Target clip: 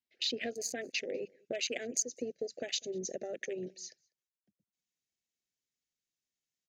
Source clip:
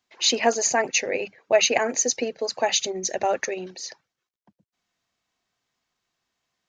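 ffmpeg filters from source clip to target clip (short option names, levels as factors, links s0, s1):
-filter_complex "[0:a]afwtdn=0.0398,asetnsamples=n=441:p=0,asendcmd='0.98 equalizer g 8.5',equalizer=f=6800:w=1.6:g=-4.5,acompressor=threshold=0.0178:ratio=3,asuperstop=centerf=1000:order=4:qfactor=0.77,asplit=2[s0][s1];[s1]adelay=198.3,volume=0.0398,highshelf=f=4000:g=-4.46[s2];[s0][s2]amix=inputs=2:normalize=0"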